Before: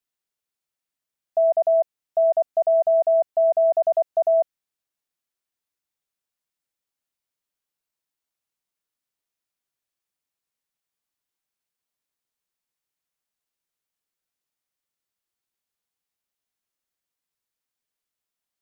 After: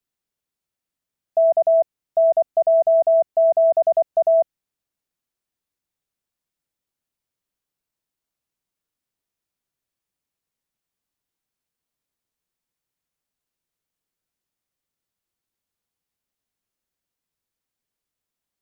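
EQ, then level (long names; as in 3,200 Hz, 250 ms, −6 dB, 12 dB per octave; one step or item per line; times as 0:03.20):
low-shelf EQ 430 Hz +8.5 dB
0.0 dB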